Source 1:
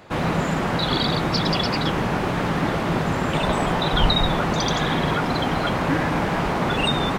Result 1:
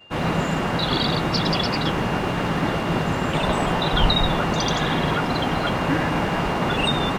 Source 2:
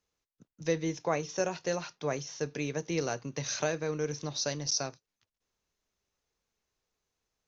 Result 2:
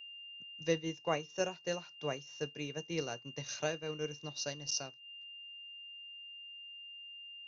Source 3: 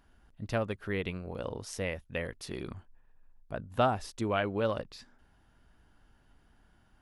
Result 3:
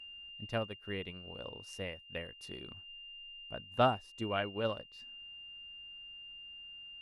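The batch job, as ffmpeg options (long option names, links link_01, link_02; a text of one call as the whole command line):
ffmpeg -i in.wav -af "aeval=exprs='val(0)+0.0126*sin(2*PI*2800*n/s)':channel_layout=same,acompressor=mode=upward:threshold=-25dB:ratio=2.5,agate=range=-33dB:threshold=-22dB:ratio=3:detection=peak" out.wav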